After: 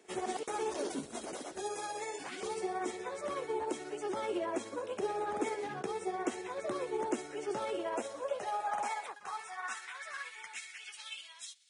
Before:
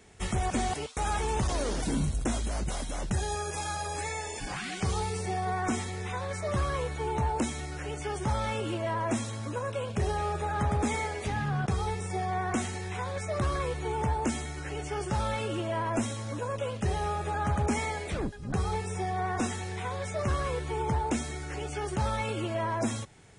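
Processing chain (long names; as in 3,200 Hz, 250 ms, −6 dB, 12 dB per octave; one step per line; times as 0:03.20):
time stretch by overlap-add 0.5×, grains 123 ms
high-pass filter sweep 360 Hz → 3,900 Hz, 0:07.55–0:11.53
level −6 dB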